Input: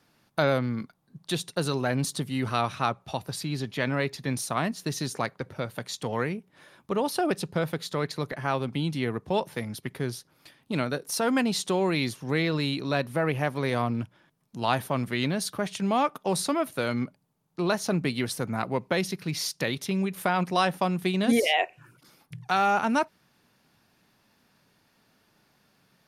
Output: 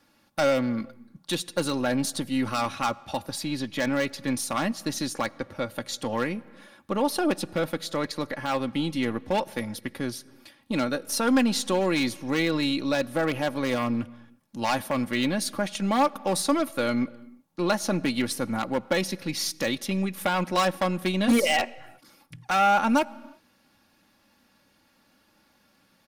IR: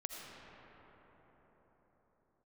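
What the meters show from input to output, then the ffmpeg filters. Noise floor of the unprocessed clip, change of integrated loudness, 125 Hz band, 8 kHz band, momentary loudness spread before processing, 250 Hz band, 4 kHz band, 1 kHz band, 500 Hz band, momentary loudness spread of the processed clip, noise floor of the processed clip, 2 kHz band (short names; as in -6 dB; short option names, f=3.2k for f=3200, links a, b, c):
-67 dBFS, +1.5 dB, -4.0 dB, +2.5 dB, 9 LU, +2.5 dB, +1.5 dB, +1.0 dB, +1.0 dB, 10 LU, -65 dBFS, +1.0 dB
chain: -filter_complex "[0:a]aeval=exprs='0.141*(abs(mod(val(0)/0.141+3,4)-2)-1)':c=same,aeval=exprs='0.141*(cos(1*acos(clip(val(0)/0.141,-1,1)))-cos(1*PI/2))+0.00355*(cos(6*acos(clip(val(0)/0.141,-1,1)))-cos(6*PI/2))':c=same,aecho=1:1:3.6:0.58,asplit=2[a][b];[1:a]atrim=start_sample=2205,afade=t=out:st=0.42:d=0.01,atrim=end_sample=18963[c];[b][c]afir=irnorm=-1:irlink=0,volume=-16.5dB[d];[a][d]amix=inputs=2:normalize=0"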